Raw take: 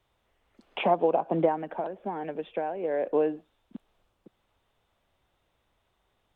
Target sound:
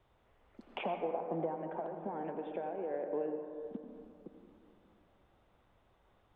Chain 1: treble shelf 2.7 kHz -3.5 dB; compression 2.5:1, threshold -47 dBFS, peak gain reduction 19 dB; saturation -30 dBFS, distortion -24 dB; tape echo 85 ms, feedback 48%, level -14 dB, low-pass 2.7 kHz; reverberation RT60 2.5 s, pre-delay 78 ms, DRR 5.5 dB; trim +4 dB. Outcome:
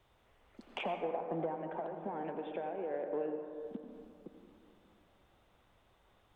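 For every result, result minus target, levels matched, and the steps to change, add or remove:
saturation: distortion +16 dB; 4 kHz band +3.5 dB
change: saturation -21.5 dBFS, distortion -39 dB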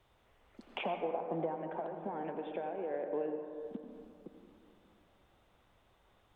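4 kHz band +3.5 dB
change: treble shelf 2.7 kHz -13 dB

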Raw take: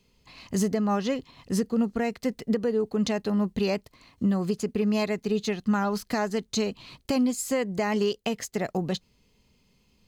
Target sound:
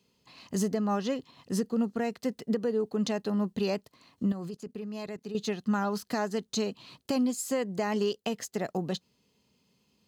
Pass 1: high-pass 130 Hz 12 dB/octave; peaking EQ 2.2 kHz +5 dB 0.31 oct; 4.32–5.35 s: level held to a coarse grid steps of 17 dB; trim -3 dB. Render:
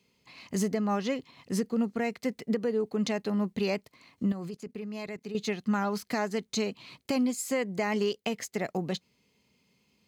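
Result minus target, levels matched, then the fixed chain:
2 kHz band +3.5 dB
high-pass 130 Hz 12 dB/octave; peaking EQ 2.2 kHz -5.5 dB 0.31 oct; 4.32–5.35 s: level held to a coarse grid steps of 17 dB; trim -3 dB

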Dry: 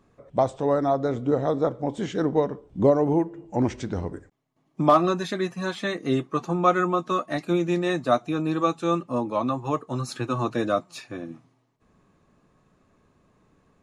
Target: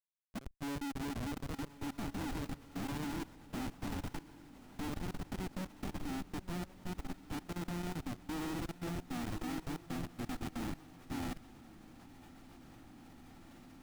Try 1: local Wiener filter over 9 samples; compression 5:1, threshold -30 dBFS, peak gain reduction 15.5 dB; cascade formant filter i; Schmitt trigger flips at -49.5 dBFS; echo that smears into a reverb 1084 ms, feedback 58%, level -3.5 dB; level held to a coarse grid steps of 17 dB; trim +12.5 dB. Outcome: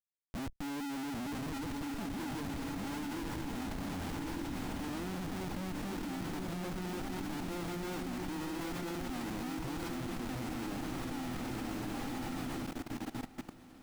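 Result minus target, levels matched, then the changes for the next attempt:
compression: peak gain reduction -8 dB
change: compression 5:1, threshold -40 dBFS, peak gain reduction 23.5 dB

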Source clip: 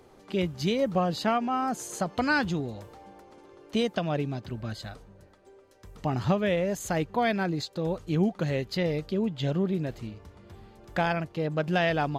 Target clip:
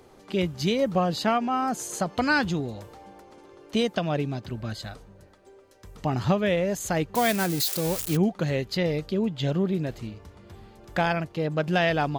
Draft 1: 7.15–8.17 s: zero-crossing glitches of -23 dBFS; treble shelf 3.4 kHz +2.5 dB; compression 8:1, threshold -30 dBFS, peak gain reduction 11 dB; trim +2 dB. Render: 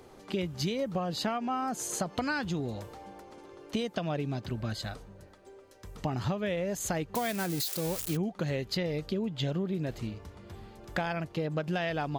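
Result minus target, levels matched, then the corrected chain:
compression: peak gain reduction +11 dB
7.15–8.17 s: zero-crossing glitches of -23 dBFS; treble shelf 3.4 kHz +2.5 dB; trim +2 dB

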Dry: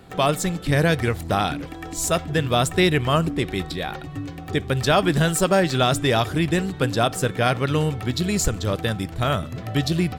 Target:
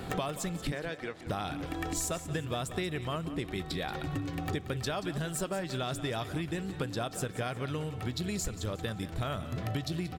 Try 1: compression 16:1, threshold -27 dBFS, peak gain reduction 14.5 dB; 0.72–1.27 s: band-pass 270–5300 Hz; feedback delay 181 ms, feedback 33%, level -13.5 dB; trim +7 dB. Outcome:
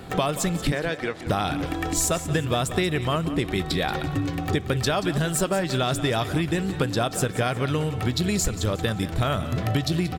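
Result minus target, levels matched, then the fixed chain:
compression: peak gain reduction -10.5 dB
compression 16:1, threshold -38 dBFS, peak gain reduction 24.5 dB; 0.72–1.27 s: band-pass 270–5300 Hz; feedback delay 181 ms, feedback 33%, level -13.5 dB; trim +7 dB

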